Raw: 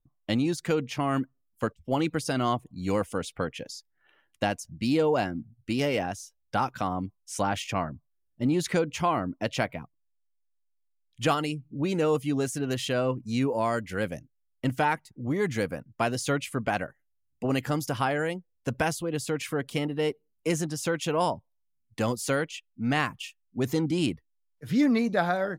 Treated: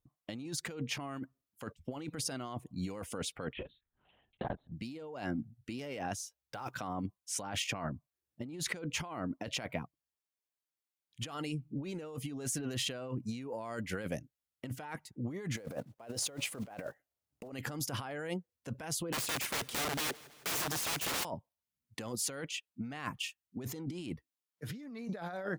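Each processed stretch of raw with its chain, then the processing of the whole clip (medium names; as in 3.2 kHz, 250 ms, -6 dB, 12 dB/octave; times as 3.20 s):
3.53–4.72 s: touch-sensitive phaser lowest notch 220 Hz, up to 2.6 kHz, full sweep at -32 dBFS + LPC vocoder at 8 kHz whisper + transformer saturation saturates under 360 Hz
6.20–6.79 s: block-companded coder 7-bit + peaking EQ 220 Hz -11.5 dB 0.27 oct
15.57–17.52 s: block-companded coder 5-bit + peaking EQ 580 Hz +10.5 dB 1.5 oct
19.12–21.25 s: integer overflow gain 30 dB + feedback delay 163 ms, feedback 59%, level -21 dB
whole clip: high-pass 89 Hz 6 dB/octave; compressor with a negative ratio -34 dBFS, ratio -1; trim -5.5 dB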